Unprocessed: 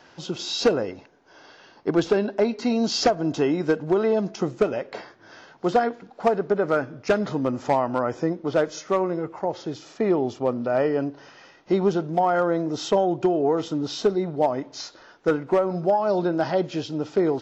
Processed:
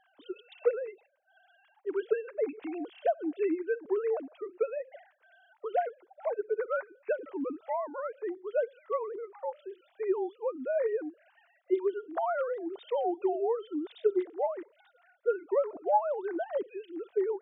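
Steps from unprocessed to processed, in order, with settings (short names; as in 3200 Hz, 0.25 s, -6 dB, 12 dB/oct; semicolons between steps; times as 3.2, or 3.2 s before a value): sine-wave speech; gain -9 dB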